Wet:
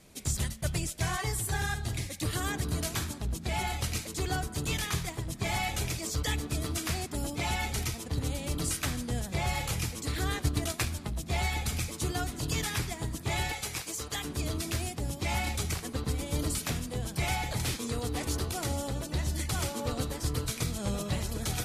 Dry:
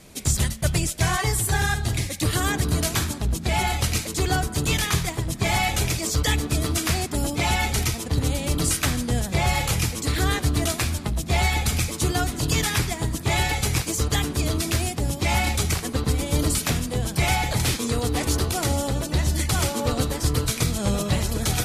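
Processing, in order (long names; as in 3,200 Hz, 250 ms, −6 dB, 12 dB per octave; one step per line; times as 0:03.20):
0:10.42–0:10.95: transient designer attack +8 dB, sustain −4 dB
0:13.52–0:14.25: low-shelf EQ 300 Hz −12 dB
level −9 dB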